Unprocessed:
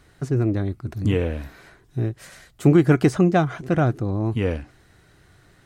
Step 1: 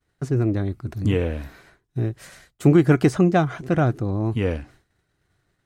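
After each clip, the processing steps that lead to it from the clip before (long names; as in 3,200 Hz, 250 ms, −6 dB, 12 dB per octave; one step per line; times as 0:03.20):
downward expander −43 dBFS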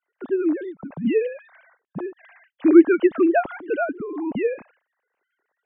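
three sine waves on the formant tracks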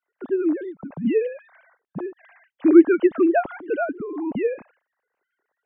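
high-shelf EQ 2,600 Hz −7 dB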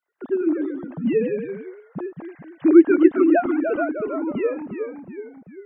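delay with pitch and tempo change per echo 97 ms, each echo −1 semitone, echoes 3, each echo −6 dB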